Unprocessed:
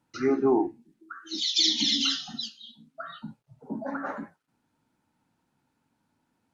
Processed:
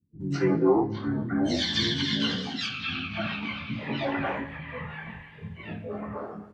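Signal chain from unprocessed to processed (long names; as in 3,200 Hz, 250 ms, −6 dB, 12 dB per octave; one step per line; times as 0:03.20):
every overlapping window played backwards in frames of 36 ms
treble cut that deepens with the level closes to 3,000 Hz, closed at −27 dBFS
high-shelf EQ 4,300 Hz −7 dB
in parallel at +3 dB: downward compressor, threshold −38 dBFS, peak gain reduction 16 dB
on the sum: notch comb filter 1,300 Hz
pitch-shifted copies added −12 semitones −8 dB, +5 semitones −14 dB
multiband delay without the direct sound lows, highs 200 ms, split 230 Hz
on a send at −16.5 dB: convolution reverb RT60 1.8 s, pre-delay 10 ms
on the sum: delay with pitch and tempo change per echo 491 ms, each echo −5 semitones, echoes 2, each echo −6 dB
level +3 dB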